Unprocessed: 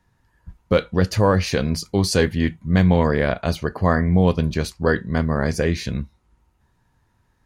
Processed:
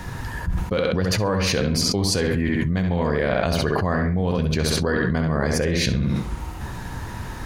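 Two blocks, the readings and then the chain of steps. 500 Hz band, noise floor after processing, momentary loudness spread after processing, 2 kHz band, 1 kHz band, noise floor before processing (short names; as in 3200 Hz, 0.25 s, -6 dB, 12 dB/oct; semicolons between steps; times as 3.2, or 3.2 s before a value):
-2.0 dB, -33 dBFS, 11 LU, 0.0 dB, -2.0 dB, -65 dBFS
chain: spectral gain 2.23–2.46, 2700–6700 Hz -15 dB; tape echo 67 ms, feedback 33%, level -5 dB, low-pass 5200 Hz; fast leveller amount 100%; gain -8.5 dB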